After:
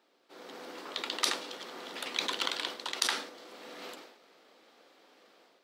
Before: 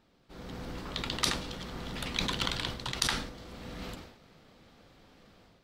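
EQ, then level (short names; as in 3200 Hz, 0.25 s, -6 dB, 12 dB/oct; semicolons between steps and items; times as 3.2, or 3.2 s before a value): HPF 320 Hz 24 dB/oct; 0.0 dB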